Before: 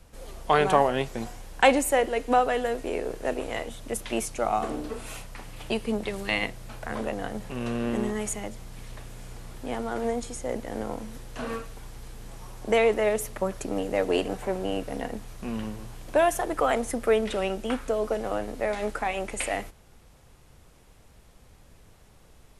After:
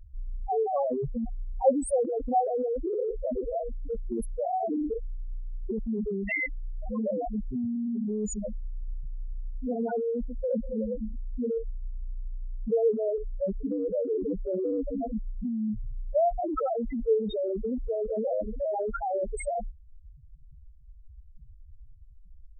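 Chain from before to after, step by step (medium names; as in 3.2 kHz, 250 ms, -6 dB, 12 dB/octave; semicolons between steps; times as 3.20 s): loudest bins only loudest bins 2; in parallel at +2.5 dB: compressor with a negative ratio -37 dBFS, ratio -0.5; on the sum: dynamic bell 530 Hz, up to +3 dB, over -41 dBFS, Q 7.4; trim -1 dB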